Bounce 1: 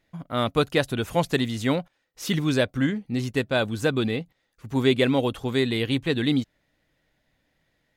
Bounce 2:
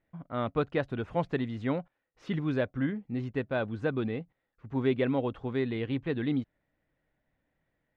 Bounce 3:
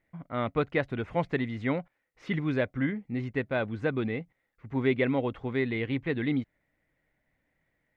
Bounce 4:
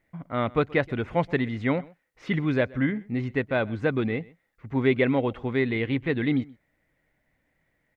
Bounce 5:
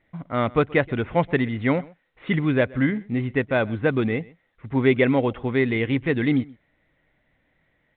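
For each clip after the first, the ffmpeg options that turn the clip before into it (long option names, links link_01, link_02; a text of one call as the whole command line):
ffmpeg -i in.wav -af "lowpass=1900,volume=-6.5dB" out.wav
ffmpeg -i in.wav -af "equalizer=frequency=2100:width_type=o:width=0.36:gain=9,volume=1dB" out.wav
ffmpeg -i in.wav -af "aecho=1:1:127:0.0708,volume=4dB" out.wav
ffmpeg -i in.wav -af "volume=3.5dB" -ar 8000 -c:a pcm_mulaw out.wav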